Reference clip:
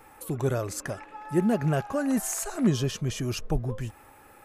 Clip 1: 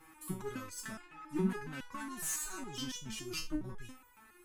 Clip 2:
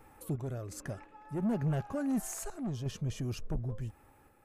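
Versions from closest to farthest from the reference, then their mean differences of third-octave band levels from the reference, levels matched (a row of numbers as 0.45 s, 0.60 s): 2, 1; 4.0 dB, 7.5 dB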